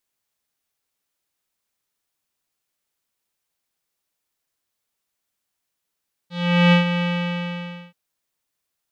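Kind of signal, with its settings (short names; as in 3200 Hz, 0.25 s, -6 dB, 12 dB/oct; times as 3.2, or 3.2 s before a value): synth note square F3 12 dB/oct, low-pass 2800 Hz, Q 3.7, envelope 0.5 oct, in 0.19 s, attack 0.421 s, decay 0.12 s, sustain -9 dB, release 0.91 s, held 0.72 s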